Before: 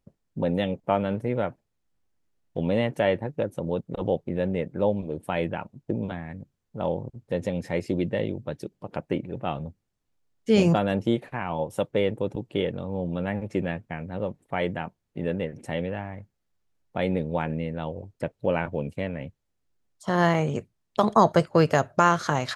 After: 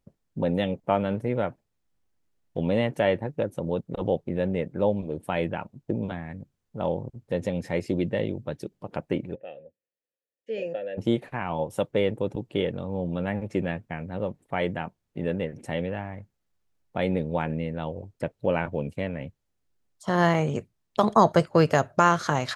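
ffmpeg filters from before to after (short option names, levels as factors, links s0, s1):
-filter_complex "[0:a]asplit=3[s0][s1][s2];[s0]afade=t=out:st=9.34:d=0.02[s3];[s1]asplit=3[s4][s5][s6];[s4]bandpass=f=530:t=q:w=8,volume=1[s7];[s5]bandpass=f=1840:t=q:w=8,volume=0.501[s8];[s6]bandpass=f=2480:t=q:w=8,volume=0.355[s9];[s7][s8][s9]amix=inputs=3:normalize=0,afade=t=in:st=9.34:d=0.02,afade=t=out:st=10.97:d=0.02[s10];[s2]afade=t=in:st=10.97:d=0.02[s11];[s3][s10][s11]amix=inputs=3:normalize=0"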